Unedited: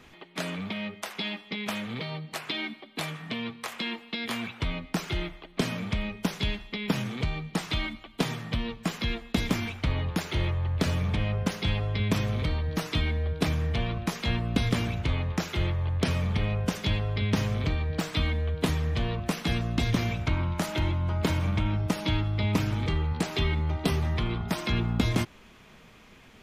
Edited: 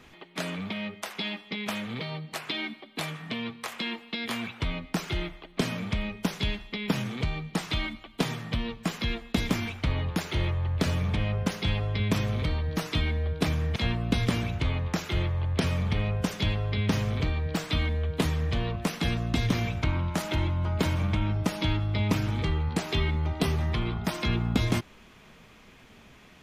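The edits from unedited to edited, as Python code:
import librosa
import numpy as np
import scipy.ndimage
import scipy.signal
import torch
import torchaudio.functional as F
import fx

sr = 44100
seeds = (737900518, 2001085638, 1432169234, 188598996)

y = fx.edit(x, sr, fx.cut(start_s=13.76, length_s=0.44), tone=tone)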